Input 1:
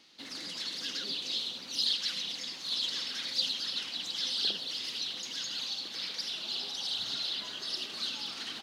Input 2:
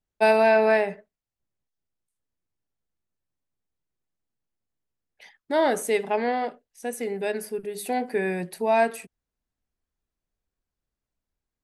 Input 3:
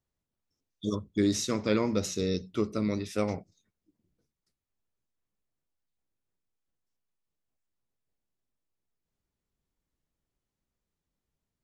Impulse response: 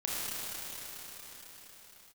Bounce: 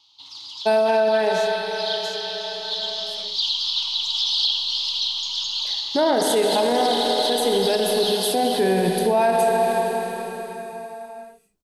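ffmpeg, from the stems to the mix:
-filter_complex "[0:a]firequalizer=gain_entry='entry(120,0);entry(180,-29);entry(290,-17);entry(580,-23);entry(900,7);entry(1700,-24);entry(3200,5);entry(9100,-10)':delay=0.05:min_phase=1,volume=0.891,asplit=2[s0][s1];[s1]volume=0.355[s2];[1:a]equalizer=f=2100:w=1.9:g=-9.5,adelay=450,volume=1.12,asplit=2[s3][s4];[s4]volume=0.531[s5];[2:a]aderivative,volume=0.473,asplit=2[s6][s7];[s7]apad=whole_len=384591[s8];[s0][s8]sidechaincompress=threshold=0.00112:ratio=8:attack=16:release=276[s9];[3:a]atrim=start_sample=2205[s10];[s2][s5]amix=inputs=2:normalize=0[s11];[s11][s10]afir=irnorm=-1:irlink=0[s12];[s9][s3][s6][s12]amix=inputs=4:normalize=0,dynaudnorm=f=820:g=5:m=3.76,alimiter=limit=0.282:level=0:latency=1:release=53"

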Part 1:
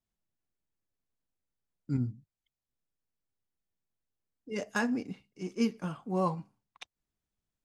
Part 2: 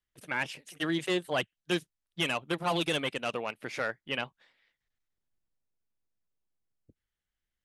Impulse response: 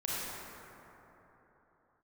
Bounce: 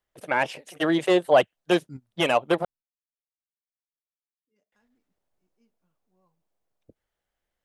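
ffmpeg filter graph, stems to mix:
-filter_complex "[0:a]volume=0.335[s0];[1:a]equalizer=f=630:w=0.81:g=14,volume=1.26,asplit=3[s1][s2][s3];[s1]atrim=end=2.65,asetpts=PTS-STARTPTS,afade=t=out:st=2.646:d=0.004:c=hsin[s4];[s2]atrim=start=2.65:end=4.72,asetpts=PTS-STARTPTS,volume=0[s5];[s3]atrim=start=4.72,asetpts=PTS-STARTPTS,afade=t=in:d=0.004:c=hsin[s6];[s4][s5][s6]concat=n=3:v=0:a=1,asplit=2[s7][s8];[s8]apad=whole_len=337296[s9];[s0][s9]sidechaingate=range=0.0282:threshold=0.00501:ratio=16:detection=peak[s10];[s10][s7]amix=inputs=2:normalize=0"

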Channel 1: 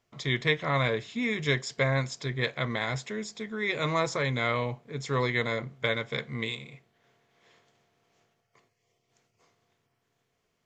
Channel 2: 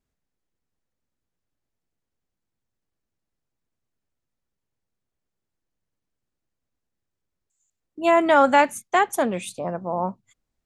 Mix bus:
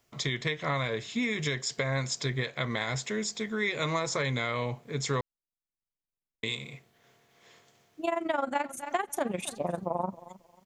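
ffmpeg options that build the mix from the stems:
-filter_complex "[0:a]highshelf=f=7000:g=11.5,alimiter=limit=0.112:level=0:latency=1:release=304,volume=1.41,asplit=3[s0][s1][s2];[s0]atrim=end=5.21,asetpts=PTS-STARTPTS,afade=t=out:st=5.206:d=0.004:c=hsin[s3];[s1]atrim=start=5.21:end=6.43,asetpts=PTS-STARTPTS,volume=0[s4];[s2]atrim=start=6.43,asetpts=PTS-STARTPTS,afade=t=in:d=0.004:c=hsin[s5];[s3][s4][s5]concat=n=3:v=0:a=1,asplit=2[s6][s7];[1:a]tremolo=f=23:d=0.824,volume=1.12,asplit=2[s8][s9];[s9]volume=0.0944[s10];[s7]apad=whole_len=469968[s11];[s8][s11]sidechaincompress=threshold=0.00562:ratio=8:attack=7.1:release=1480[s12];[s10]aecho=0:1:269|538|807|1076:1|0.23|0.0529|0.0122[s13];[s6][s12][s13]amix=inputs=3:normalize=0,acompressor=threshold=0.0562:ratio=12"

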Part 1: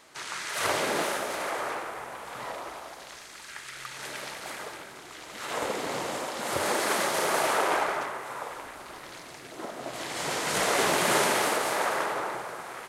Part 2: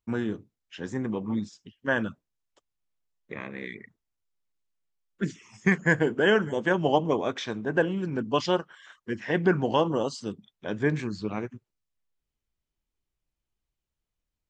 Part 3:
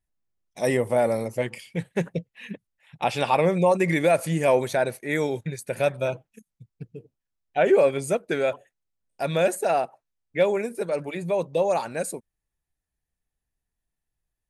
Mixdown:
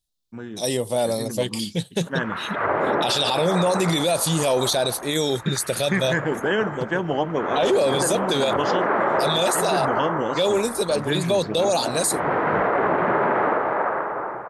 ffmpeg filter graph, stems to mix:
-filter_complex "[0:a]lowpass=f=1600:w=0.5412,lowpass=f=1600:w=1.3066,alimiter=limit=0.112:level=0:latency=1:release=235,adelay=2000,volume=1.33[s0];[1:a]adelay=250,volume=0.473[s1];[2:a]highshelf=f=2800:t=q:w=3:g=10,volume=0.794[s2];[s0][s1][s2]amix=inputs=3:normalize=0,dynaudnorm=f=140:g=21:m=3.55,alimiter=limit=0.251:level=0:latency=1:release=20"

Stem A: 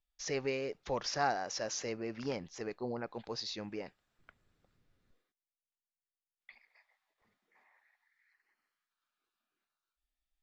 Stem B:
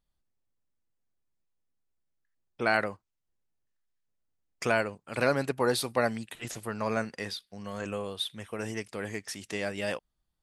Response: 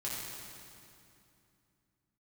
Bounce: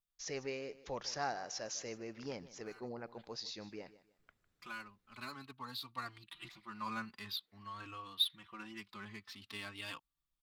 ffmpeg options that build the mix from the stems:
-filter_complex "[0:a]volume=0.473,asplit=3[s0][s1][s2];[s1]volume=0.141[s3];[1:a]firequalizer=gain_entry='entry(330,0);entry(480,-15);entry(1100,11);entry(1700,0);entry(4000,13);entry(6100,-8)':delay=0.05:min_phase=1,adynamicsmooth=sensitivity=6:basefreq=3400,asplit=2[s4][s5];[s5]adelay=3.8,afreqshift=0.49[s6];[s4][s6]amix=inputs=2:normalize=1,volume=0.316,afade=t=in:st=5.84:d=0.58:silence=0.398107[s7];[s2]apad=whole_len=464233[s8];[s7][s8]sidechaincompress=threshold=0.00126:ratio=10:attack=8.4:release=855[s9];[s3]aecho=0:1:153|306|459|612:1|0.27|0.0729|0.0197[s10];[s0][s9][s10]amix=inputs=3:normalize=0,highshelf=f=6400:g=7.5"

